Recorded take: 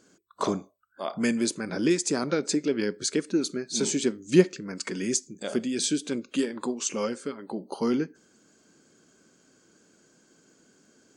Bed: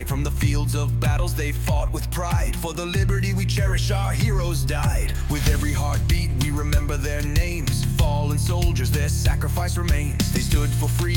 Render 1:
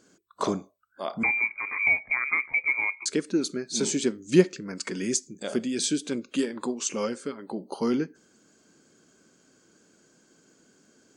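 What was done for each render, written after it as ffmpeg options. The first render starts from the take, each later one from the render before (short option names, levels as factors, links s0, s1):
-filter_complex "[0:a]asettb=1/sr,asplit=3[s0][s1][s2];[s0]atrim=end=1.234[s3];[s1]atrim=start=1.23:end=3.06,asetpts=PTS-STARTPTS,afade=t=in:d=0.004:c=qsin,afade=t=out:st=1.826:d=0.004:c=qsin,lowpass=f=2200:t=q:w=0.5098,lowpass=f=2200:t=q:w=0.6013,lowpass=f=2200:t=q:w=0.9,lowpass=f=2200:t=q:w=2.563,afreqshift=-2600[s4];[s2]atrim=start=3.056[s5];[s3][s4]acrossfade=d=0.004:c1=hsin:c2=qsin[s6];[s6][s5]acrossfade=d=0.004:c1=qsin:c2=hsin"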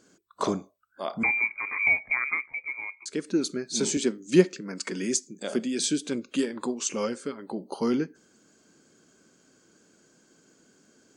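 -filter_complex "[0:a]asettb=1/sr,asplit=3[s0][s1][s2];[s0]atrim=end=3.974[s3];[s1]atrim=start=3.97:end=5.85,asetpts=PTS-STARTPTS,afade=t=in:d=0.004:c=qsin,afade=t=out:st=1.876:d=0.004:c=qsin,highpass=f=150:w=0.5412,highpass=f=150:w=1.3066[s4];[s2]atrim=start=5.846[s5];[s3][s4]acrossfade=d=0.004:c1=hsin:c2=qsin[s6];[s6][s5]acrossfade=d=0.004:c1=qsin:c2=hsin,asplit=3[s7][s8][s9];[s7]atrim=end=2.48,asetpts=PTS-STARTPTS,afade=t=out:st=2.25:d=0.23:silence=0.354813[s10];[s8]atrim=start=2.48:end=3.08,asetpts=PTS-STARTPTS,volume=0.355[s11];[s9]atrim=start=3.08,asetpts=PTS-STARTPTS,afade=t=in:d=0.23:silence=0.354813[s12];[s10][s11][s12]concat=n=3:v=0:a=1"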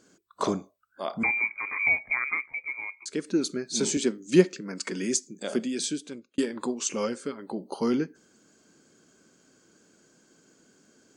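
-filter_complex "[0:a]asettb=1/sr,asplit=3[s0][s1][s2];[s0]atrim=end=1.174[s3];[s1]atrim=start=1.17:end=2.36,asetpts=PTS-STARTPTS,afade=t=in:d=0.004:c=qsin,afade=t=out:st=1.186:d=0.004:c=qsin,acrossover=split=3500[s4][s5];[s5]acompressor=threshold=0.00224:ratio=4:attack=1:release=60[s6];[s4][s6]amix=inputs=2:normalize=0[s7];[s2]atrim=start=2.356[s8];[s3][s7]acrossfade=d=0.004:c1=hsin:c2=qsin[s9];[s9][s8]acrossfade=d=0.004:c1=qsin:c2=hsin,asplit=2[s10][s11];[s10]atrim=end=6.38,asetpts=PTS-STARTPTS,afade=t=out:st=5.61:d=0.77[s12];[s11]atrim=start=6.38,asetpts=PTS-STARTPTS,afade=t=in:d=0.004:c=hsin[s13];[s12][s13]concat=n=2:v=0:a=1"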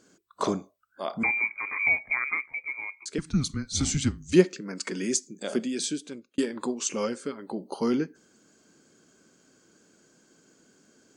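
-filter_complex "[0:a]asettb=1/sr,asplit=3[s0][s1][s2];[s0]atrim=end=3.184[s3];[s1]atrim=start=3.18:end=4.33,asetpts=PTS-STARTPTS,afade=t=in:d=0.004:c=qsin,afade=t=out:st=1.146:d=0.004:c=qsin,afreqshift=-140[s4];[s2]atrim=start=4.326[s5];[s3][s4]acrossfade=d=0.004:c1=hsin:c2=qsin[s6];[s6][s5]acrossfade=d=0.004:c1=qsin:c2=hsin"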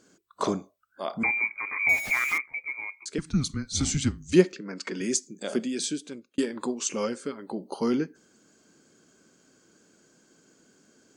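-filter_complex "[0:a]asettb=1/sr,asplit=3[s0][s1][s2];[s0]atrim=end=1.894[s3];[s1]atrim=start=1.89:end=2.38,asetpts=PTS-STARTPTS,afade=t=in:d=0.004:c=qsin,afade=t=out:st=0.486:d=0.004:c=qsin,aeval=exprs='val(0)+0.5*0.0335*sgn(val(0))':c=same[s4];[s2]atrim=start=2.376[s5];[s3][s4]acrossfade=d=0.004:c1=hsin:c2=qsin[s6];[s6][s5]acrossfade=d=0.004:c1=qsin:c2=hsin,asettb=1/sr,asplit=3[s7][s8][s9];[s7]atrim=end=4.524[s10];[s8]atrim=start=4.52:end=5.01,asetpts=PTS-STARTPTS,afade=t=in:d=0.004:c=qsin,afade=t=out:st=0.486:d=0.004:c=qsin,highpass=160,lowpass=5000[s11];[s9]atrim=start=5.006[s12];[s10][s11]acrossfade=d=0.004:c1=hsin:c2=qsin[s13];[s13][s12]acrossfade=d=0.004:c1=qsin:c2=hsin"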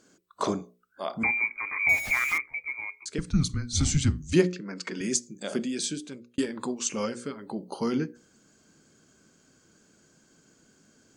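-af "asubboost=boost=2.5:cutoff=170,bandreject=f=60:t=h:w=6,bandreject=f=120:t=h:w=6,bandreject=f=180:t=h:w=6,bandreject=f=240:t=h:w=6,bandreject=f=300:t=h:w=6,bandreject=f=360:t=h:w=6,bandreject=f=420:t=h:w=6,bandreject=f=480:t=h:w=6,bandreject=f=540:t=h:w=6"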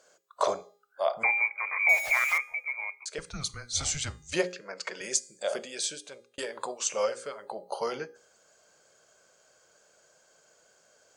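-af "lowshelf=f=390:t=q:w=3:g=-13.5,bandreject=f=407.2:t=h:w=4,bandreject=f=814.4:t=h:w=4,bandreject=f=1221.6:t=h:w=4,bandreject=f=1628.8:t=h:w=4,bandreject=f=2036:t=h:w=4,bandreject=f=2443.2:t=h:w=4,bandreject=f=2850.4:t=h:w=4,bandreject=f=3257.6:t=h:w=4,bandreject=f=3664.8:t=h:w=4,bandreject=f=4072:t=h:w=4,bandreject=f=4479.2:t=h:w=4,bandreject=f=4886.4:t=h:w=4,bandreject=f=5293.6:t=h:w=4,bandreject=f=5700.8:t=h:w=4,bandreject=f=6108:t=h:w=4,bandreject=f=6515.2:t=h:w=4,bandreject=f=6922.4:t=h:w=4,bandreject=f=7329.6:t=h:w=4,bandreject=f=7736.8:t=h:w=4,bandreject=f=8144:t=h:w=4,bandreject=f=8551.2:t=h:w=4,bandreject=f=8958.4:t=h:w=4,bandreject=f=9365.6:t=h:w=4,bandreject=f=9772.8:t=h:w=4,bandreject=f=10180:t=h:w=4,bandreject=f=10587.2:t=h:w=4,bandreject=f=10994.4:t=h:w=4,bandreject=f=11401.6:t=h:w=4,bandreject=f=11808.8:t=h:w=4,bandreject=f=12216:t=h:w=4,bandreject=f=12623.2:t=h:w=4,bandreject=f=13030.4:t=h:w=4,bandreject=f=13437.6:t=h:w=4,bandreject=f=13844.8:t=h:w=4,bandreject=f=14252:t=h:w=4,bandreject=f=14659.2:t=h:w=4,bandreject=f=15066.4:t=h:w=4,bandreject=f=15473.6:t=h:w=4"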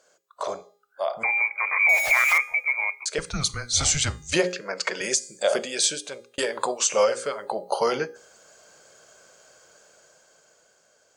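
-af "alimiter=limit=0.106:level=0:latency=1:release=66,dynaudnorm=f=430:g=7:m=2.99"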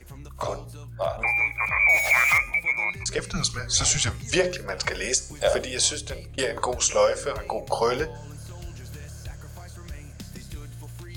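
-filter_complex "[1:a]volume=0.119[s0];[0:a][s0]amix=inputs=2:normalize=0"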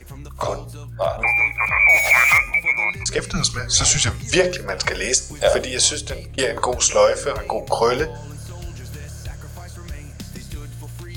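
-af "volume=1.88"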